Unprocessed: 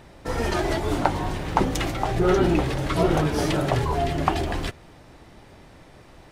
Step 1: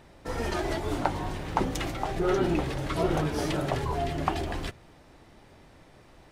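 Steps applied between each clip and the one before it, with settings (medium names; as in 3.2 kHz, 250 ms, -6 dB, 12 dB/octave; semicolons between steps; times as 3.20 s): hum notches 60/120/180 Hz; trim -5.5 dB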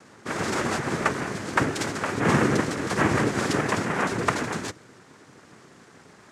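noise-vocoded speech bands 3; trim +4.5 dB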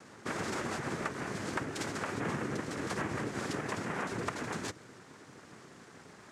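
compression 5:1, threshold -31 dBFS, peak gain reduction 14 dB; trim -2.5 dB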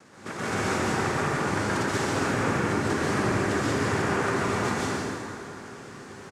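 on a send: loudspeakers at several distances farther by 40 m -11 dB, 56 m -9 dB; on the sum: plate-style reverb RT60 2.7 s, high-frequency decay 0.65×, pre-delay 115 ms, DRR -9 dB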